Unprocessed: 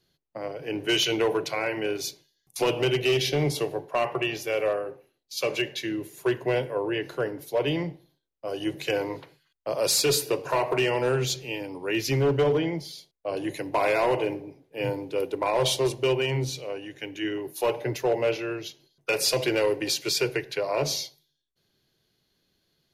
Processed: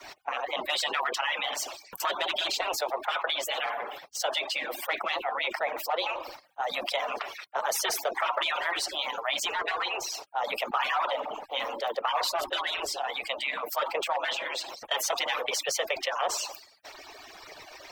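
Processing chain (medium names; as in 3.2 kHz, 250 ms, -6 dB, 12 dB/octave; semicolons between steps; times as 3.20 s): harmonic-percussive separation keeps percussive; three-band isolator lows -23 dB, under 460 Hz, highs -18 dB, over 2.3 kHz; tape speed +28%; level flattener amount 70%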